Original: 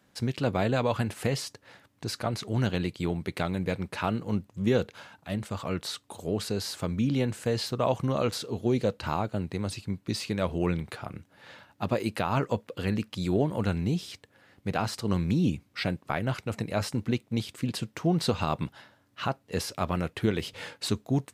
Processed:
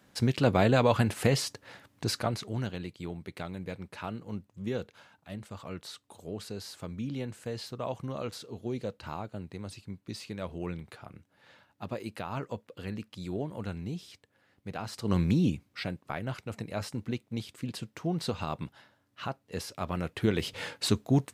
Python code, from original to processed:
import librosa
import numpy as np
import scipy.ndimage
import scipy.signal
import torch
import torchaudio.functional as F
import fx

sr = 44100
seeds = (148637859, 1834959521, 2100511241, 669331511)

y = fx.gain(x, sr, db=fx.line((2.1, 3.0), (2.74, -9.0), (14.84, -9.0), (15.2, 2.0), (15.88, -6.0), (19.76, -6.0), (20.52, 2.0)))